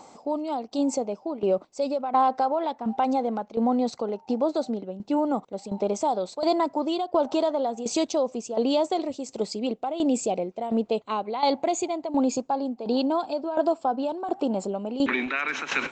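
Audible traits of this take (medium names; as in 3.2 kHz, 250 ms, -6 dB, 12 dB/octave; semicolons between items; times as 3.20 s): tremolo saw down 1.4 Hz, depth 75%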